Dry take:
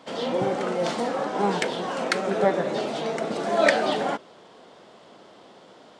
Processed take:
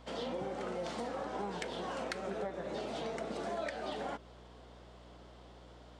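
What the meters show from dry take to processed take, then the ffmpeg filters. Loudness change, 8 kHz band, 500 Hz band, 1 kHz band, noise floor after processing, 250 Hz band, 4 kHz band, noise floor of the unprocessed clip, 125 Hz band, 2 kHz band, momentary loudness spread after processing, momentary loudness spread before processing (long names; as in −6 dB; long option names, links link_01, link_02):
−14.5 dB, −13.5 dB, −14.5 dB, −14.0 dB, −55 dBFS, −13.5 dB, −13.5 dB, −51 dBFS, −12.5 dB, −16.5 dB, 17 LU, 8 LU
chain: -af "acompressor=threshold=-27dB:ratio=12,aeval=exprs='val(0)+0.00398*(sin(2*PI*60*n/s)+sin(2*PI*2*60*n/s)/2+sin(2*PI*3*60*n/s)/3+sin(2*PI*4*60*n/s)/4+sin(2*PI*5*60*n/s)/5)':channel_layout=same,volume=-8dB"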